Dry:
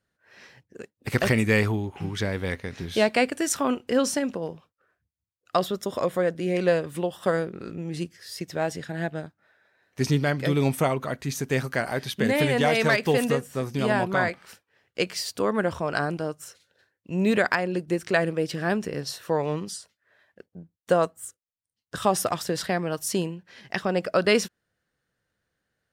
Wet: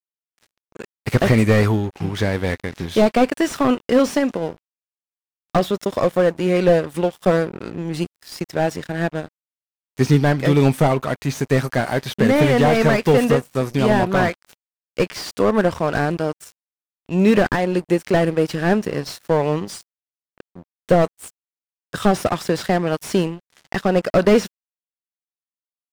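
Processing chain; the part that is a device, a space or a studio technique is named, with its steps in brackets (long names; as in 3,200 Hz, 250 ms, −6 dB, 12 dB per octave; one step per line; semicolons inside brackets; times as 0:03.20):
early transistor amplifier (dead-zone distortion −43 dBFS; slew-rate limiting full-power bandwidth 68 Hz)
level +8.5 dB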